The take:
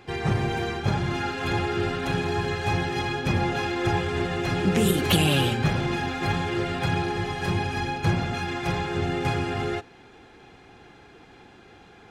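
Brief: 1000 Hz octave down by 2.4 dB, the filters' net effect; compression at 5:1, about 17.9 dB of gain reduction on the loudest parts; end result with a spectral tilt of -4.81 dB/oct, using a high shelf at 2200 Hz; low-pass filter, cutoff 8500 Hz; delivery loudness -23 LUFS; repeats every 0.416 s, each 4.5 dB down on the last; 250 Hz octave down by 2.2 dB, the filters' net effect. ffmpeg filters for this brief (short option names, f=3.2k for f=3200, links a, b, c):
-af "lowpass=8.5k,equalizer=f=250:t=o:g=-3.5,equalizer=f=1k:t=o:g=-4,highshelf=f=2.2k:g=5,acompressor=threshold=-39dB:ratio=5,aecho=1:1:416|832|1248|1664|2080|2496|2912|3328|3744:0.596|0.357|0.214|0.129|0.0772|0.0463|0.0278|0.0167|0.01,volume=16dB"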